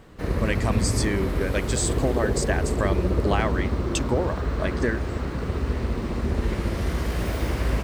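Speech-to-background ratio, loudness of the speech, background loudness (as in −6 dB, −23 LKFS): −2.0 dB, −28.5 LKFS, −26.5 LKFS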